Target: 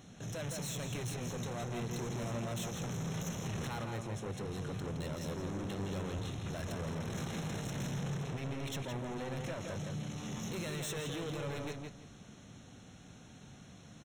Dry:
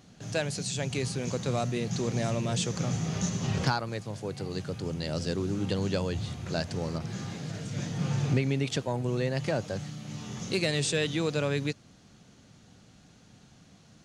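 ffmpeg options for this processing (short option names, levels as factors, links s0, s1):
-filter_complex "[0:a]asettb=1/sr,asplit=3[s0][s1][s2];[s0]atrim=end=6.664[s3];[s1]atrim=start=6.66:end=8.03,asetpts=PTS-STARTPTS,afade=t=in:d=0.004:c=qsin,afade=t=out:st=1.366:d=0.004:c=qsin,acontrast=72[s4];[s2]atrim=start=8.026[s5];[s3][s4]acrossfade=d=0.004:c1=hsin:c2=qsin[s6];[s6][s5]acrossfade=d=0.004:c1=qsin:c2=hsin,alimiter=limit=0.0794:level=0:latency=1:release=19,asoftclip=type=tanh:threshold=0.0106,asuperstop=centerf=4700:order=8:qfactor=4.9,asplit=2[s7][s8];[s8]adelay=166,lowpass=f=4100:p=1,volume=0.631,asplit=2[s9][s10];[s10]adelay=166,lowpass=f=4100:p=1,volume=0.26,asplit=2[s11][s12];[s12]adelay=166,lowpass=f=4100:p=1,volume=0.26,asplit=2[s13][s14];[s14]adelay=166,lowpass=f=4100:p=1,volume=0.26[s15];[s7][s9][s11][s13][s15]amix=inputs=5:normalize=0,volume=1.12"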